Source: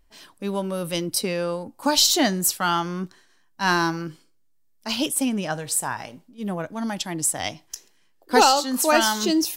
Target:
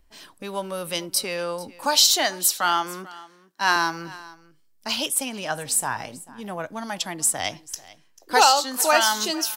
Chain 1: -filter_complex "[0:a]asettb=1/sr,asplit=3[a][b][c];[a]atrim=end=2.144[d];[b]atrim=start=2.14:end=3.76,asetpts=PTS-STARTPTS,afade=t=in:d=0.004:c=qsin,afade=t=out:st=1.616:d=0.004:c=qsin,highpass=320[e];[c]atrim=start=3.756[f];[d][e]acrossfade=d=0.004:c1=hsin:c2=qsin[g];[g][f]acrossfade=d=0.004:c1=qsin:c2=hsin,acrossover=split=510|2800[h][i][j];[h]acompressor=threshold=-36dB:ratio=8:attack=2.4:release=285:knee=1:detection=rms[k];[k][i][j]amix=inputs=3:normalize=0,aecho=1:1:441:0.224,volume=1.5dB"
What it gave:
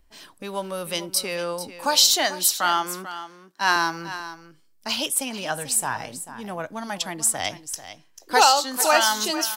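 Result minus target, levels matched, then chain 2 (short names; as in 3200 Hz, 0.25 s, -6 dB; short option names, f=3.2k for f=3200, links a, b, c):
echo-to-direct +7 dB
-filter_complex "[0:a]asettb=1/sr,asplit=3[a][b][c];[a]atrim=end=2.144[d];[b]atrim=start=2.14:end=3.76,asetpts=PTS-STARTPTS,afade=t=in:d=0.004:c=qsin,afade=t=out:st=1.616:d=0.004:c=qsin,highpass=320[e];[c]atrim=start=3.756[f];[d][e]acrossfade=d=0.004:c1=hsin:c2=qsin[g];[g][f]acrossfade=d=0.004:c1=qsin:c2=hsin,acrossover=split=510|2800[h][i][j];[h]acompressor=threshold=-36dB:ratio=8:attack=2.4:release=285:knee=1:detection=rms[k];[k][i][j]amix=inputs=3:normalize=0,aecho=1:1:441:0.1,volume=1.5dB"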